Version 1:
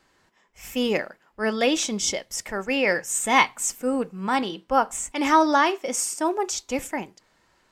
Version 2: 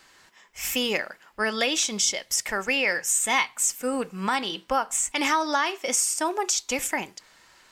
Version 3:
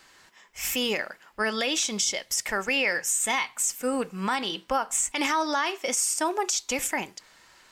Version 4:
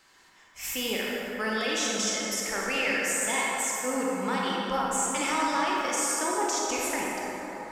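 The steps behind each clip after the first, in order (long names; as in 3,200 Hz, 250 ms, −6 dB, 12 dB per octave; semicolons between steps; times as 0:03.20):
tilt shelving filter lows −6 dB; downward compressor 3 to 1, threshold −30 dBFS, peak gain reduction 15 dB; level +6 dB
brickwall limiter −15.5 dBFS, peak gain reduction 5.5 dB
convolution reverb RT60 4.5 s, pre-delay 23 ms, DRR −4.5 dB; level −6 dB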